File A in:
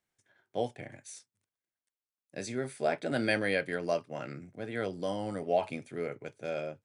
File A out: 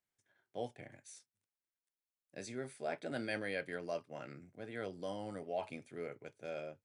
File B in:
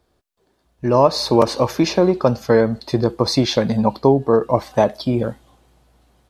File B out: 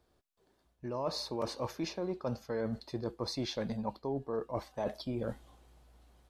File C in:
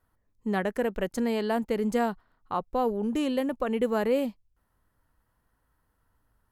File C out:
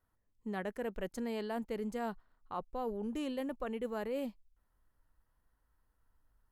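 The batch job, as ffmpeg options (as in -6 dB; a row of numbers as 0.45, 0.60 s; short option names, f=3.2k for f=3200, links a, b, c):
-af "asubboost=boost=3:cutoff=58,areverse,acompressor=threshold=-26dB:ratio=6,areverse,volume=-7.5dB"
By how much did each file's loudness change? -9.5, -20.0, -11.0 LU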